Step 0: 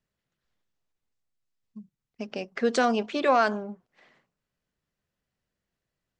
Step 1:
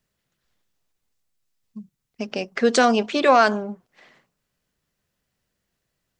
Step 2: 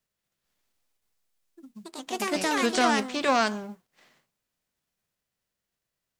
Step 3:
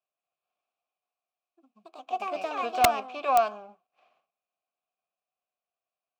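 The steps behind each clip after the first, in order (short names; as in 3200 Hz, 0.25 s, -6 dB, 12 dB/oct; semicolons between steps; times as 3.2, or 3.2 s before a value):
high shelf 4200 Hz +5.5 dB; gain +6 dB
spectral whitening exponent 0.6; echoes that change speed 0.234 s, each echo +4 st, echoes 2; gain -8 dB
careless resampling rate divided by 2×, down filtered, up hold; vowel filter a; wrapped overs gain 18 dB; gain +6.5 dB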